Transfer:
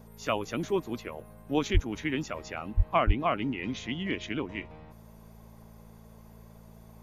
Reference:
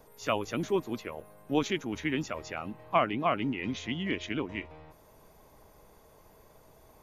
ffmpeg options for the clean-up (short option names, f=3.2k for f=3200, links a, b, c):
-filter_complex "[0:a]bandreject=f=55.7:t=h:w=4,bandreject=f=111.4:t=h:w=4,bandreject=f=167.1:t=h:w=4,bandreject=f=222.8:t=h:w=4,asplit=3[a][b][c];[a]afade=t=out:st=1.73:d=0.02[d];[b]highpass=f=140:w=0.5412,highpass=f=140:w=1.3066,afade=t=in:st=1.73:d=0.02,afade=t=out:st=1.85:d=0.02[e];[c]afade=t=in:st=1.85:d=0.02[f];[d][e][f]amix=inputs=3:normalize=0,asplit=3[g][h][i];[g]afade=t=out:st=2.76:d=0.02[j];[h]highpass=f=140:w=0.5412,highpass=f=140:w=1.3066,afade=t=in:st=2.76:d=0.02,afade=t=out:st=2.88:d=0.02[k];[i]afade=t=in:st=2.88:d=0.02[l];[j][k][l]amix=inputs=3:normalize=0,asplit=3[m][n][o];[m]afade=t=out:st=3.06:d=0.02[p];[n]highpass=f=140:w=0.5412,highpass=f=140:w=1.3066,afade=t=in:st=3.06:d=0.02,afade=t=out:st=3.18:d=0.02[q];[o]afade=t=in:st=3.18:d=0.02[r];[p][q][r]amix=inputs=3:normalize=0"